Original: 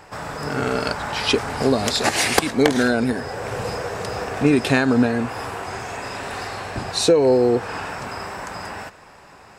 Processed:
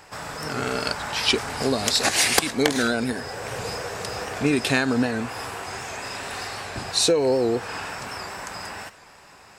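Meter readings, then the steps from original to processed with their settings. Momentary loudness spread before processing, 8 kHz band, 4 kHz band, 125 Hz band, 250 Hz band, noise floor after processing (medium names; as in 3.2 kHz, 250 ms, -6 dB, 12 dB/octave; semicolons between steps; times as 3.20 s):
14 LU, +2.5 dB, +1.0 dB, -5.5 dB, -5.5 dB, -49 dBFS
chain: treble shelf 2 kHz +8.5 dB; warped record 78 rpm, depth 100 cents; trim -5.5 dB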